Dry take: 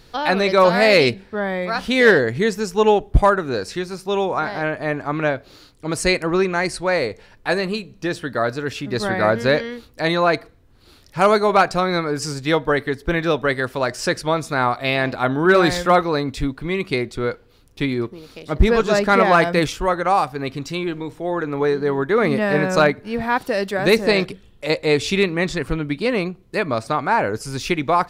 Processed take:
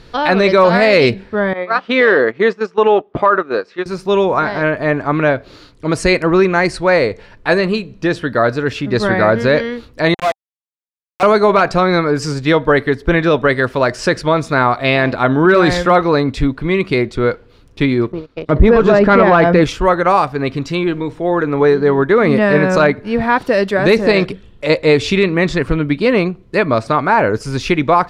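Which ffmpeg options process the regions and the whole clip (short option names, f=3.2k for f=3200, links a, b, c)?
-filter_complex "[0:a]asettb=1/sr,asplit=3[a][b][c];[a]atrim=end=1.534[d];[b]atrim=start=1.53:end=3.86,asetpts=PTS-STARTPTS,afade=t=in:d=0.004:c=qsin,afade=t=out:st=2.326:d=0.004:c=qsin,agate=range=-12dB:threshold=-24dB:ratio=16:release=100:detection=peak,highpass=310,lowpass=3.5k,equalizer=f=1.2k:w=7.6:g=8.5[e];[c]atrim=start=3.856[f];[d][e]acrossfade=d=0.004:c1=hsin:c2=qsin[g];[g][f]acrossfade=d=0.004:c1=qsin:c2=hsin,asettb=1/sr,asplit=3[h][i][j];[h]atrim=end=10.144[k];[i]atrim=start=10.14:end=11.23,asetpts=PTS-STARTPTS,afade=t=in:d=0.004:c=qsin,afade=t=out:st=1.086:d=0.004:c=qsin,asplit=3[l][m][n];[l]bandpass=f=730:t=q:w=8,volume=0dB[o];[m]bandpass=f=1.09k:t=q:w=8,volume=-6dB[p];[n]bandpass=f=2.44k:t=q:w=8,volume=-9dB[q];[o][p][q]amix=inputs=3:normalize=0,aeval=exprs='val(0)*gte(abs(val(0)),0.075)':c=same[r];[j]atrim=start=11.226[s];[k][r]acrossfade=d=0.004:c1=hsin:c2=qsin[t];[t][s]acrossfade=d=0.004:c1=qsin:c2=hsin,asettb=1/sr,asplit=3[u][v][w];[u]atrim=end=18.124[x];[v]atrim=start=18.12:end=19.64,asetpts=PTS-STARTPTS,afade=t=in:d=0.004:c=qsin,afade=t=out:st=1.516:d=0.004:c=qsin,lowpass=f=1.6k:p=1,agate=range=-21dB:threshold=-39dB:ratio=16:release=100:detection=peak,aeval=exprs='0.794*sin(PI/2*1.41*val(0)/0.794)':c=same[y];[w]atrim=start=19.636[z];[x][y]acrossfade=d=0.004:c1=hsin:c2=qsin[aa];[aa][z]acrossfade=d=0.004:c1=qsin:c2=hsin,aemphasis=mode=reproduction:type=50fm,bandreject=f=780:w=12,alimiter=level_in=8.5dB:limit=-1dB:release=50:level=0:latency=1,volume=-1dB"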